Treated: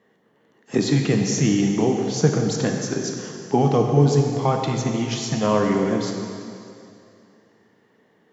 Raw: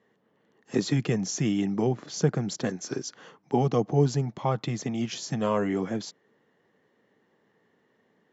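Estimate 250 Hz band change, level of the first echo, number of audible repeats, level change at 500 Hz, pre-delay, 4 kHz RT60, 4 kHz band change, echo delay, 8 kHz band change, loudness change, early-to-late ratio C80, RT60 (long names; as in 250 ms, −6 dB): +7.0 dB, no echo audible, no echo audible, +7.0 dB, 7 ms, 2.4 s, +7.0 dB, no echo audible, can't be measured, +7.0 dB, 4.0 dB, 2.6 s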